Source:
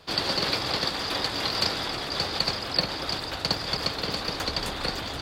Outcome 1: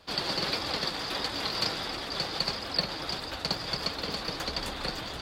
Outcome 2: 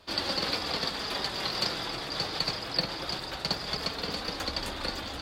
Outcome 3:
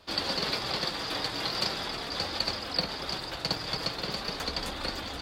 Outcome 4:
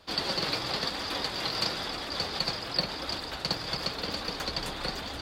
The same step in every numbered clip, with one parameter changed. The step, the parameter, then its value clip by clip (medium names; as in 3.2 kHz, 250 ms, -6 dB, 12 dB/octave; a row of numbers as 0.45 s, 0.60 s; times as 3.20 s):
flange, rate: 1.5 Hz, 0.21 Hz, 0.41 Hz, 0.96 Hz